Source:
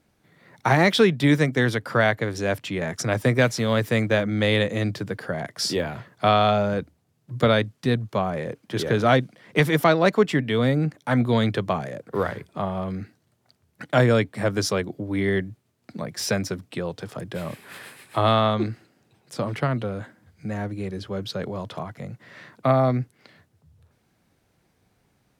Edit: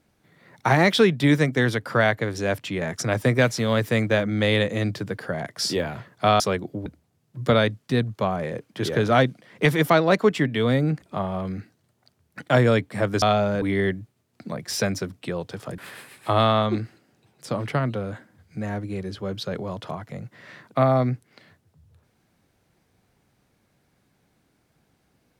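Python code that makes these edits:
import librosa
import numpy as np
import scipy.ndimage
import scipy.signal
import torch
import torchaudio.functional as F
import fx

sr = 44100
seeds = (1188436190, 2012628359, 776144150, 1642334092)

y = fx.edit(x, sr, fx.swap(start_s=6.4, length_s=0.4, other_s=14.65, other_length_s=0.46),
    fx.cut(start_s=10.96, length_s=1.49),
    fx.cut(start_s=17.27, length_s=0.39), tone=tone)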